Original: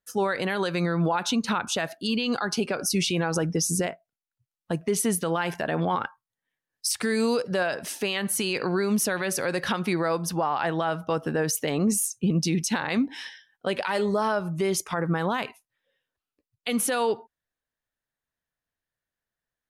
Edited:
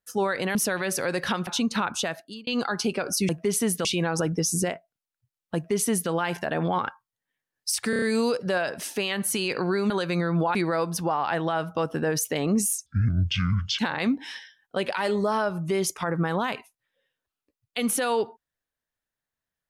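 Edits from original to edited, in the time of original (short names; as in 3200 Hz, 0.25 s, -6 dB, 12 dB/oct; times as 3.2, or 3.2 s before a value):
0.55–1.2 swap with 8.95–9.87
1.73–2.2 fade out
4.72–5.28 copy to 3.02
7.07 stutter 0.03 s, 5 plays
12.18–12.69 speed 55%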